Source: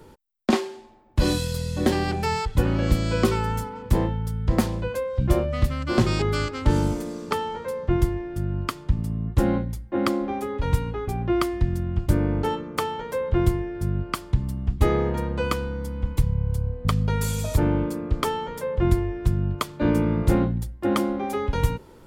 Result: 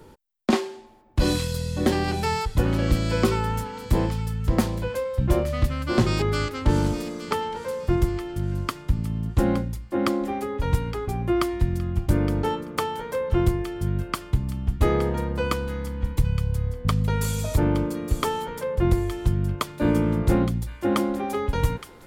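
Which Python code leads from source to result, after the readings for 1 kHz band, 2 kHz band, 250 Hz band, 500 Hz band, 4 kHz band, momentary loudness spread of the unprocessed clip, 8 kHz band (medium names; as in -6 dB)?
0.0 dB, 0.0 dB, 0.0 dB, 0.0 dB, +0.5 dB, 6 LU, +0.5 dB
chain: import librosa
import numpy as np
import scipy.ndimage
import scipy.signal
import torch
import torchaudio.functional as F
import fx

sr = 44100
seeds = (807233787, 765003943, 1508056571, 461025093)

p1 = np.clip(x, -10.0 ** (-10.5 / 20.0), 10.0 ** (-10.5 / 20.0))
y = p1 + fx.echo_wet_highpass(p1, sr, ms=867, feedback_pct=37, hz=1700.0, wet_db=-10, dry=0)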